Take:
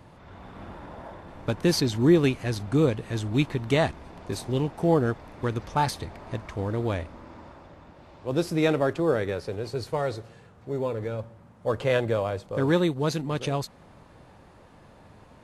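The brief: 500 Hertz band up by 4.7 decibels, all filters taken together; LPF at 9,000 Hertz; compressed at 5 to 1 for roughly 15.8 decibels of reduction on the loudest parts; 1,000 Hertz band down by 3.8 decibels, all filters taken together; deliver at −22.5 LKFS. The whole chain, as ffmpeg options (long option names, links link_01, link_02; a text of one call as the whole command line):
ffmpeg -i in.wav -af "lowpass=9000,equalizer=frequency=500:width_type=o:gain=7.5,equalizer=frequency=1000:width_type=o:gain=-8.5,acompressor=threshold=-31dB:ratio=5,volume=13dB" out.wav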